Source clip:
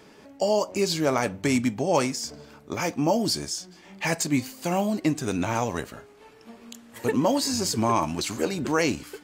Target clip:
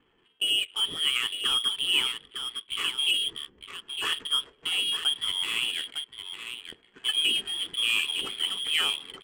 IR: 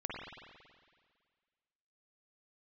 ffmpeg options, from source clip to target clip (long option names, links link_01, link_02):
-af "aecho=1:1:906:0.376,lowpass=frequency=3000:width_type=q:width=0.5098,lowpass=frequency=3000:width_type=q:width=0.6013,lowpass=frequency=3000:width_type=q:width=0.9,lowpass=frequency=3000:width_type=q:width=2.563,afreqshift=-3500,adynamicsmooth=sensitivity=8:basefreq=820,lowshelf=frequency=510:width_type=q:width=3:gain=6.5,volume=-3.5dB"